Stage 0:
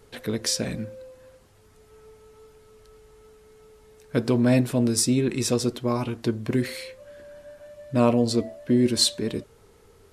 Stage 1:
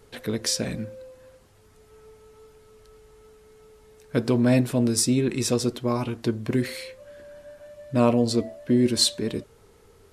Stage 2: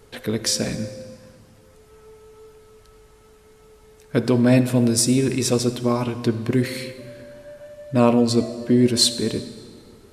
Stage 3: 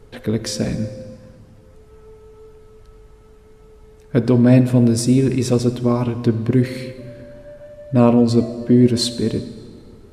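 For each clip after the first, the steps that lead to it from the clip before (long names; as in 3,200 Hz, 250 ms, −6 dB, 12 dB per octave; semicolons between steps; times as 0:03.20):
no processing that can be heard
convolution reverb RT60 1.9 s, pre-delay 49 ms, DRR 12 dB; level +3.5 dB
spectral tilt −2 dB per octave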